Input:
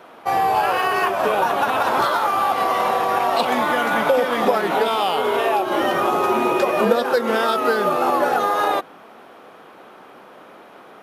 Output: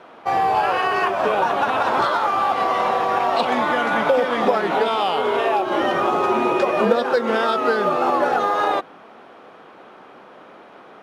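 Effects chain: air absorption 68 m

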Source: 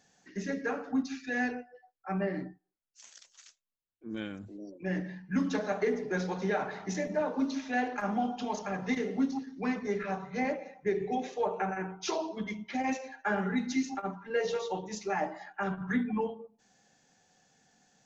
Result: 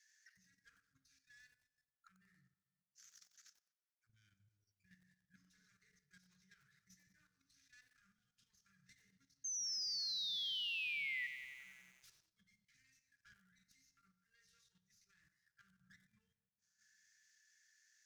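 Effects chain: tracing distortion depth 0.17 ms; in parallel at -0.5 dB: limiter -26.5 dBFS, peak gain reduction 8 dB; on the sum: auto-wah 320–2000 Hz, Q 4.6, down, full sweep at -33 dBFS; inverse Chebyshev band-stop 230–820 Hz, stop band 50 dB; reverb RT60 1.7 s, pre-delay 6 ms, DRR 8 dB; sample leveller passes 1; resonant high shelf 4000 Hz +13 dB, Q 1.5; level quantiser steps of 10 dB; painted sound fall, 9.44–11.27, 1900–6400 Hz -38 dBFS; bell 1000 Hz -13 dB 0.21 oct; lo-fi delay 92 ms, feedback 80%, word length 10-bit, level -10 dB; gain -4 dB

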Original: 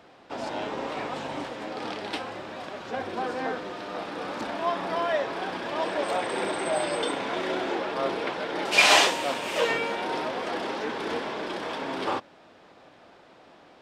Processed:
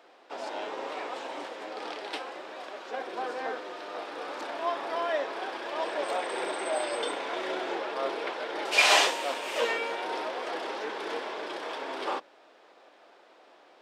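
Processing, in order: octaver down 1 oct, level -1 dB; HPF 340 Hz 24 dB/oct; gain -3 dB

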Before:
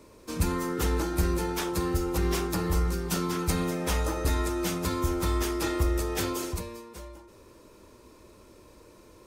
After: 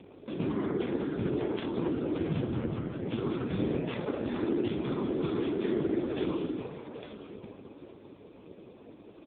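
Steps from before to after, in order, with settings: HPF 190 Hz 12 dB/oct; on a send: echo 0.847 s -12.5 dB; 2.29–3.06 on the sum: LPC vocoder at 8 kHz pitch kept; whisperiser; in parallel at 0 dB: compressor 6:1, threshold -45 dBFS, peak gain reduction 18.5 dB; on the sum: bell 1300 Hz -10.5 dB 2.6 oct; hum 50 Hz, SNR 24 dB; gain +4.5 dB; AMR-NB 4.75 kbps 8000 Hz

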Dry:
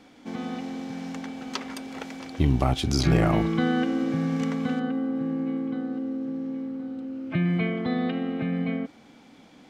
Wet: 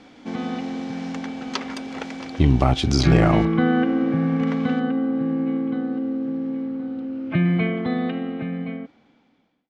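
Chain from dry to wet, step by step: ending faded out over 2.29 s; LPF 6400 Hz 12 dB/oct, from 3.45 s 2300 Hz, from 4.47 s 3900 Hz; gain +5 dB

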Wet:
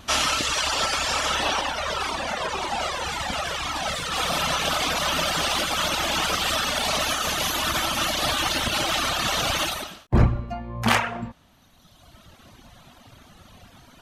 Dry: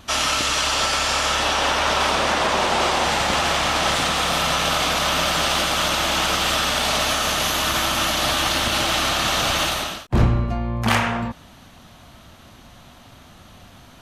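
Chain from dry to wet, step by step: reverb removal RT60 1.8 s; 1.61–4.12 cascading flanger falling 1.9 Hz

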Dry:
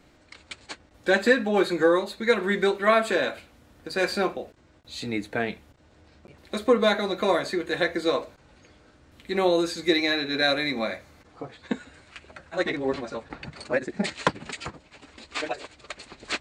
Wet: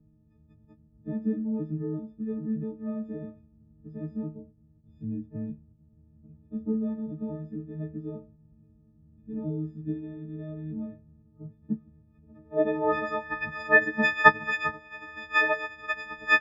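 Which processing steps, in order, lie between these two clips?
frequency quantiser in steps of 6 st; low-pass sweep 170 Hz -> 1800 Hz, 12.23–13.01; gain -1.5 dB

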